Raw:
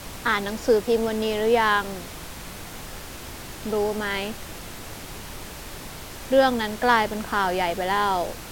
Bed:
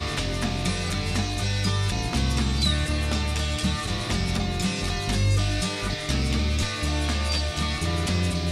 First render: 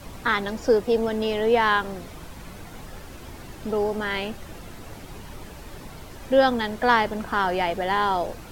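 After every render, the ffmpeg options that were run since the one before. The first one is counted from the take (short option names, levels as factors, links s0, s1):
-af "afftdn=nr=9:nf=-39"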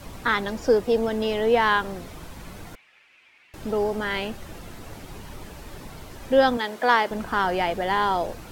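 -filter_complex "[0:a]asettb=1/sr,asplit=3[s0][s1][s2];[s0]atrim=end=2.754[s3];[s1]atrim=start=2.75:end=3.54,asetpts=PTS-STARTPTS,afade=t=in:d=0.004:c=qsin,afade=t=out:st=0.786:d=0.004:c=qsin,bandpass=f=2400:t=q:w=4.6[s4];[s2]atrim=start=3.536[s5];[s3][s4]acrossfade=d=0.004:c1=hsin:c2=qsin[s6];[s6][s5]acrossfade=d=0.004:c1=qsin:c2=hsin,asettb=1/sr,asplit=3[s7][s8][s9];[s7]atrim=end=6.574[s10];[s8]atrim=start=6.57:end=7.11,asetpts=PTS-STARTPTS,afade=t=in:d=0.004:c=qsin,afade=t=out:st=0.536:d=0.004:c=qsin,highpass=300[s11];[s9]atrim=start=7.106[s12];[s10][s11]acrossfade=d=0.004:c1=hsin:c2=qsin[s13];[s13][s12]acrossfade=d=0.004:c1=qsin:c2=hsin"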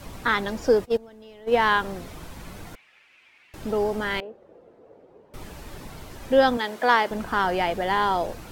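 -filter_complex "[0:a]asplit=3[s0][s1][s2];[s0]afade=t=out:st=0.84:d=0.02[s3];[s1]agate=range=0.0891:threshold=0.1:ratio=16:release=100:detection=peak,afade=t=in:st=0.84:d=0.02,afade=t=out:st=1.57:d=0.02[s4];[s2]afade=t=in:st=1.57:d=0.02[s5];[s3][s4][s5]amix=inputs=3:normalize=0,asettb=1/sr,asplit=3[s6][s7][s8];[s6]atrim=end=4.204[s9];[s7]atrim=start=4.2:end=5.34,asetpts=PTS-STARTPTS,afade=t=in:d=0.004:c=qsin,afade=t=out:st=1.136:d=0.004:c=qsin,bandpass=f=480:t=q:w=3.7[s10];[s8]atrim=start=5.336[s11];[s9][s10]acrossfade=d=0.004:c1=hsin:c2=qsin[s12];[s12][s11]acrossfade=d=0.004:c1=qsin:c2=hsin"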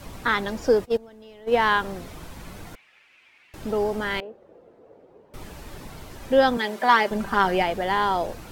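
-filter_complex "[0:a]asettb=1/sr,asplit=3[s0][s1][s2];[s0]atrim=end=6.564[s3];[s1]atrim=start=6.56:end=7.63,asetpts=PTS-STARTPTS,afade=t=in:d=0.004:c=qsin,afade=t=out:st=1.066:d=0.004:c=qsin,aecho=1:1:5.1:0.65,atrim=end_sample=47187[s4];[s2]atrim=start=7.626[s5];[s3][s4]acrossfade=d=0.004:c1=hsin:c2=qsin[s6];[s6][s5]acrossfade=d=0.004:c1=qsin:c2=hsin"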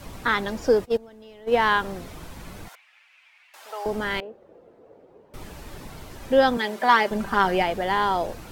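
-filter_complex "[0:a]asettb=1/sr,asplit=3[s0][s1][s2];[s0]atrim=end=2.684[s3];[s1]atrim=start=2.68:end=3.86,asetpts=PTS-STARTPTS,afade=t=in:d=0.004:c=qsin,afade=t=out:st=1.176:d=0.004:c=qsin,highpass=f=700:w=0.5412,highpass=f=700:w=1.3066[s4];[s2]atrim=start=3.856[s5];[s3][s4]acrossfade=d=0.004:c1=hsin:c2=qsin[s6];[s6][s5]acrossfade=d=0.004:c1=qsin:c2=hsin"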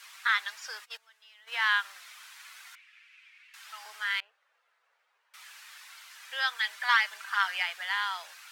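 -af "highpass=f=1400:w=0.5412,highpass=f=1400:w=1.3066,highshelf=f=11000:g=-7.5"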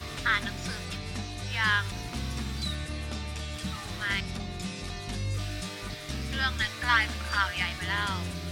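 -filter_complex "[1:a]volume=0.316[s0];[0:a][s0]amix=inputs=2:normalize=0"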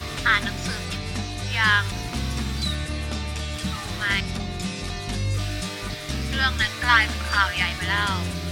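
-af "volume=2.11"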